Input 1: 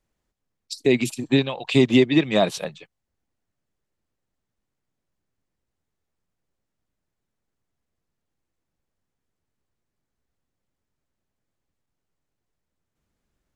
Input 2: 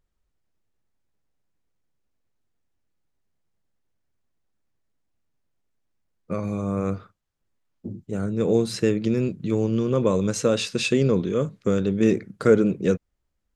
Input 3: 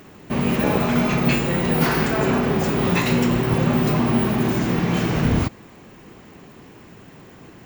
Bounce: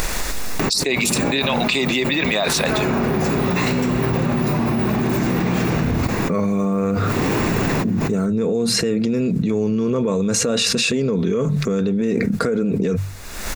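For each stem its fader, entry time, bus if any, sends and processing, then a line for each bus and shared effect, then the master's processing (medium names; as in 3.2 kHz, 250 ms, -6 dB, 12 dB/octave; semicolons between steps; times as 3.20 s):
+3.0 dB, 0.00 s, no bus, no send, high-pass 1.2 kHz 6 dB/octave
-6.5 dB, 0.00 s, bus A, no send, hum notches 50/100/150 Hz; comb 4.4 ms, depth 42%; compression 5:1, threshold -25 dBFS, peak gain reduction 14.5 dB
-16.5 dB, 0.60 s, bus A, no send, none
bus A: 0.0 dB, vibrato 0.59 Hz 49 cents; peak limiter -28 dBFS, peak gain reduction 8 dB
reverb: none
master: upward compressor, threshold -47 dBFS; band-stop 3.1 kHz, Q 8.7; level flattener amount 100%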